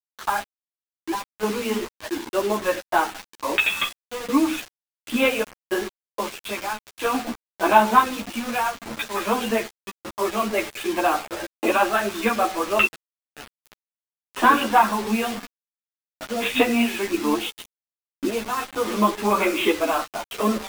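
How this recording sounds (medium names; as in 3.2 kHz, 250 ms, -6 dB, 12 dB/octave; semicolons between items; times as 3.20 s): random-step tremolo 3.5 Hz, depth 90%; a quantiser's noise floor 6-bit, dither none; a shimmering, thickened sound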